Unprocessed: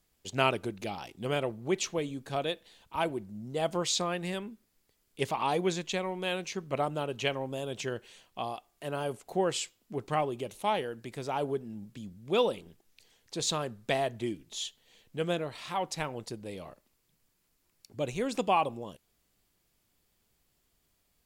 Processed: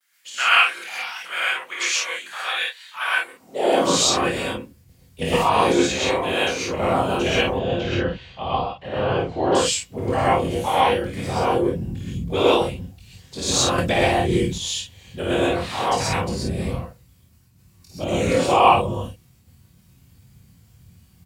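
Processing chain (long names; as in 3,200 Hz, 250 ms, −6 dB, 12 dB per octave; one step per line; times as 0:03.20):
low shelf with overshoot 120 Hz +13.5 dB, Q 3
random phases in short frames
ambience of single reflections 23 ms −3.5 dB, 52 ms −3 dB
noise gate with hold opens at −54 dBFS
0:07.47–0:09.55: low-pass filter 4,200 Hz 24 dB per octave
reverb whose tail is shaped and stops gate 150 ms rising, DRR −7.5 dB
high-pass filter sweep 1,600 Hz → 84 Hz, 0:03.28–0:04.08
0:13.78–0:14.58: multiband upward and downward compressor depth 70%
level +1.5 dB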